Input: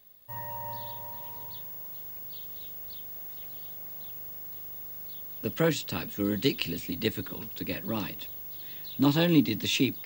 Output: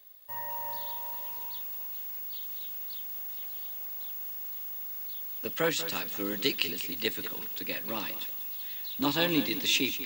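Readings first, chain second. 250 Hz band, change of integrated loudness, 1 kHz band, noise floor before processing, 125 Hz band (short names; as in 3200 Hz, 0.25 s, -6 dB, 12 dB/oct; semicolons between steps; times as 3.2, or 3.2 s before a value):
-6.5 dB, 0.0 dB, +0.5 dB, -41 dBFS, -11.5 dB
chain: HPF 750 Hz 6 dB/oct; lo-fi delay 0.192 s, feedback 35%, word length 7-bit, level -11 dB; gain +2.5 dB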